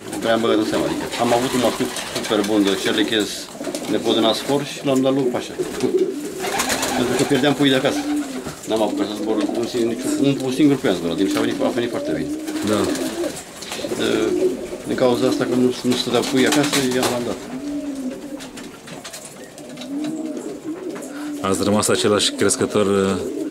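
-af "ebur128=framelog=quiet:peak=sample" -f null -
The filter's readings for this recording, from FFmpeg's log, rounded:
Integrated loudness:
  I:         -20.1 LUFS
  Threshold: -30.4 LUFS
Loudness range:
  LRA:         6.5 LU
  Threshold: -40.6 LUFS
  LRA low:   -25.5 LUFS
  LRA high:  -19.0 LUFS
Sample peak:
  Peak:       -2.3 dBFS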